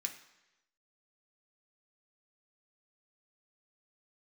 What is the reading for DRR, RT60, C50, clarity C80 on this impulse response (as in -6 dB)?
3.0 dB, 1.0 s, 10.5 dB, 13.0 dB